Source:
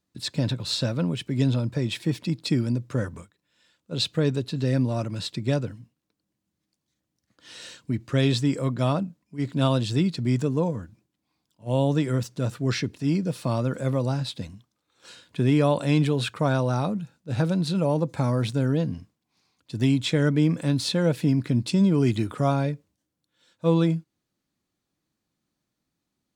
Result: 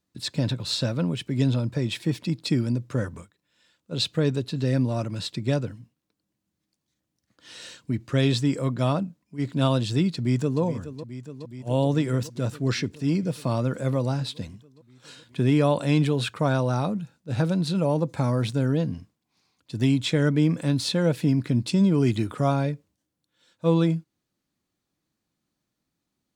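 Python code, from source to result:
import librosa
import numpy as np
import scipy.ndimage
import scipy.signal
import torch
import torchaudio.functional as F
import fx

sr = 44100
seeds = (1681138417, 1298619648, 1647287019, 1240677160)

y = fx.echo_throw(x, sr, start_s=10.14, length_s=0.47, ms=420, feedback_pct=80, wet_db=-12.5)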